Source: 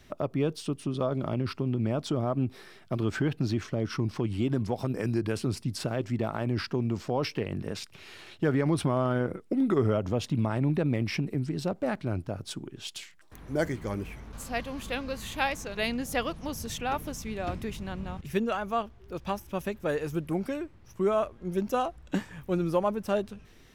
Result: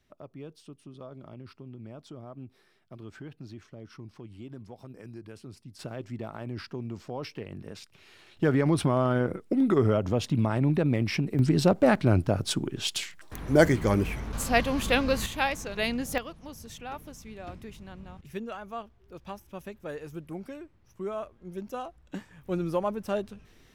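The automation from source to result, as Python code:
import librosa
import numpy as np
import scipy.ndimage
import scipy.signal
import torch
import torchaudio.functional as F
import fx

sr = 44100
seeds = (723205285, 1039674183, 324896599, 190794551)

y = fx.gain(x, sr, db=fx.steps((0.0, -15.5), (5.79, -7.5), (8.37, 2.0), (11.39, 9.0), (15.26, 1.0), (16.18, -8.5), (22.45, -2.0)))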